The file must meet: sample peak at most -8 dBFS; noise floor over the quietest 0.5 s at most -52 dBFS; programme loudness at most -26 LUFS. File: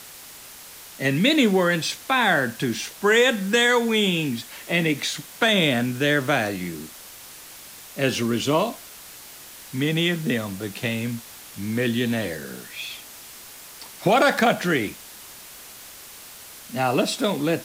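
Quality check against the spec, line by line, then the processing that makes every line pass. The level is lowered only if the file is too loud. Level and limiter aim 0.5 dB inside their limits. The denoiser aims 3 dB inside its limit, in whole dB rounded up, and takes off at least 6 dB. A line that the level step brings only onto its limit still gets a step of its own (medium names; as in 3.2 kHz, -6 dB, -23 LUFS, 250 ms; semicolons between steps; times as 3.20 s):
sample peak -6.5 dBFS: fail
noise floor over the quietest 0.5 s -43 dBFS: fail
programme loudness -22.0 LUFS: fail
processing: noise reduction 8 dB, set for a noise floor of -43 dBFS; trim -4.5 dB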